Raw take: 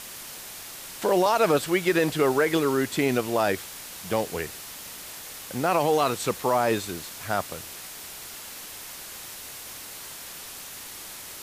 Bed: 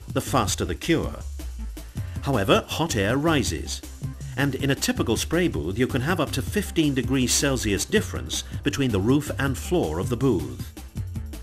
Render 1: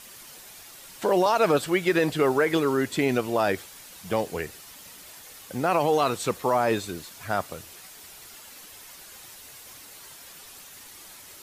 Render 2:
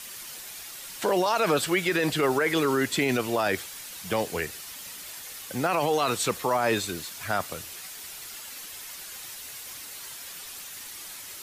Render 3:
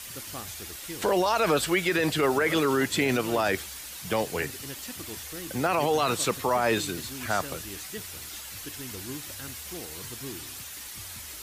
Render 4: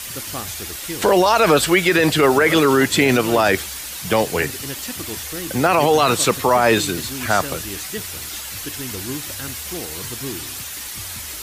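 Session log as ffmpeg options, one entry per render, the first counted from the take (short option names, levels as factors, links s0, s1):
-af "afftdn=nr=8:nf=-41"
-filter_complex "[0:a]acrossover=split=220|1300[s0][s1][s2];[s2]acontrast=39[s3];[s0][s1][s3]amix=inputs=3:normalize=0,alimiter=limit=0.178:level=0:latency=1:release=20"
-filter_complex "[1:a]volume=0.112[s0];[0:a][s0]amix=inputs=2:normalize=0"
-af "volume=2.99"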